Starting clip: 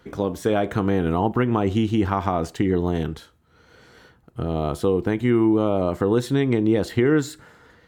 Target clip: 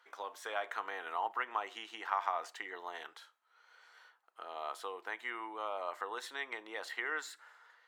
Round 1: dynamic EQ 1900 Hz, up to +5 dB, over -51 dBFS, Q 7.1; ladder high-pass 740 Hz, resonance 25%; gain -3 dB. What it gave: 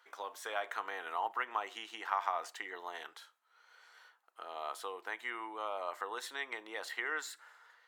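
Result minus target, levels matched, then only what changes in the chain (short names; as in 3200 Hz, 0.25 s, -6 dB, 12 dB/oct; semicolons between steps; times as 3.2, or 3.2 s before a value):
8000 Hz band +3.0 dB
add after ladder high-pass: high shelf 6800 Hz -6 dB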